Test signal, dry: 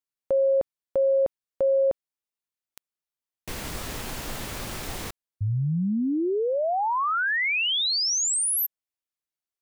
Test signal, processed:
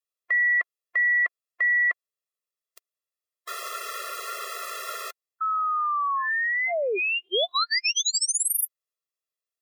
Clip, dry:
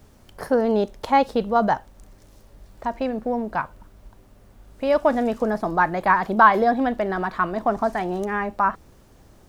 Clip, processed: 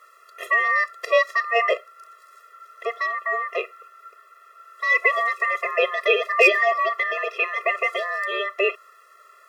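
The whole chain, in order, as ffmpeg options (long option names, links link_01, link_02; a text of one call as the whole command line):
ffmpeg -i in.wav -af "aeval=exprs='val(0)*sin(2*PI*1400*n/s)':channel_layout=same,volume=6dB,asoftclip=hard,volume=-6dB,afftfilt=real='re*eq(mod(floor(b*sr/1024/350),2),1)':imag='im*eq(mod(floor(b*sr/1024/350),2),1)':win_size=1024:overlap=0.75,volume=5.5dB" out.wav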